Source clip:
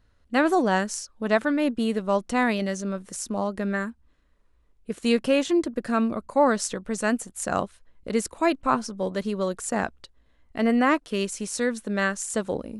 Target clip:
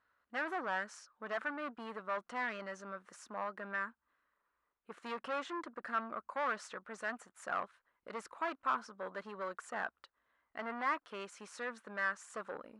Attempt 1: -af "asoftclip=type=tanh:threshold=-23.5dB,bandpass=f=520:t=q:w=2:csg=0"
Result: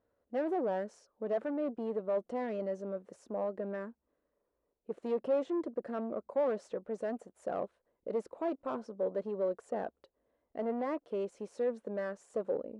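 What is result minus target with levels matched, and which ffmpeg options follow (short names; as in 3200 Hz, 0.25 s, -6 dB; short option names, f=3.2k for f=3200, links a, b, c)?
1000 Hz band -7.5 dB
-af "asoftclip=type=tanh:threshold=-23.5dB,bandpass=f=1.3k:t=q:w=2:csg=0"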